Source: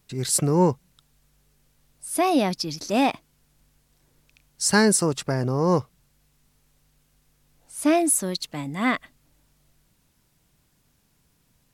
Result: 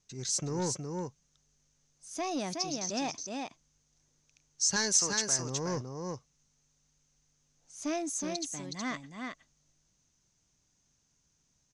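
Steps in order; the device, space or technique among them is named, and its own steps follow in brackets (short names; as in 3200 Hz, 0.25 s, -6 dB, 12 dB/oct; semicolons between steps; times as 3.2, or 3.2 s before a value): 4.76–5.39 tilt shelf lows -7.5 dB, about 650 Hz; echo 0.368 s -5 dB; overdriven synthesiser ladder filter (soft clip -13.5 dBFS, distortion -14 dB; ladder low-pass 6600 Hz, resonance 80%)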